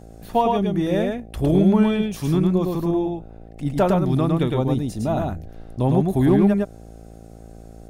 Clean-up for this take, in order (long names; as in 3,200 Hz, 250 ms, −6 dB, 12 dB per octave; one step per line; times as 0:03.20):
hum removal 55.9 Hz, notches 14
echo removal 108 ms −3 dB